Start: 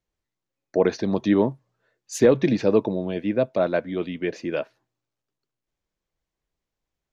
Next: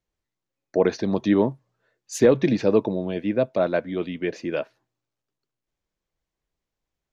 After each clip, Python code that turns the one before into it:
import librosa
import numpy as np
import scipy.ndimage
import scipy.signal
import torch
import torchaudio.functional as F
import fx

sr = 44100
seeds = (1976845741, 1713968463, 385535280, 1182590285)

y = x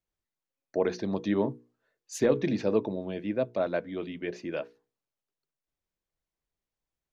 y = fx.hum_notches(x, sr, base_hz=60, count=8)
y = y * librosa.db_to_amplitude(-6.5)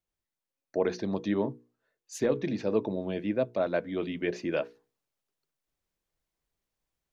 y = fx.rider(x, sr, range_db=4, speed_s=0.5)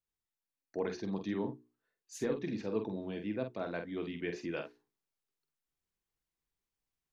y = fx.peak_eq(x, sr, hz=590.0, db=-9.5, octaves=0.3)
y = fx.doubler(y, sr, ms=47.0, db=-7)
y = y * librosa.db_to_amplitude(-6.5)